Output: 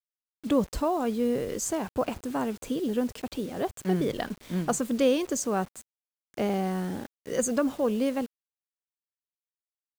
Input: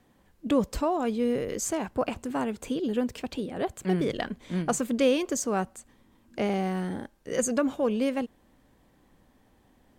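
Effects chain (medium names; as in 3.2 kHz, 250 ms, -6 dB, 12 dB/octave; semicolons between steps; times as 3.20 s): dynamic bell 2.3 kHz, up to -4 dB, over -51 dBFS, Q 1.9; bit crusher 8-bit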